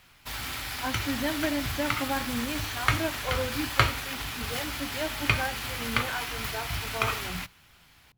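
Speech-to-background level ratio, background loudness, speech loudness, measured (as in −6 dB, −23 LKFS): −4.5 dB, −30.5 LKFS, −35.0 LKFS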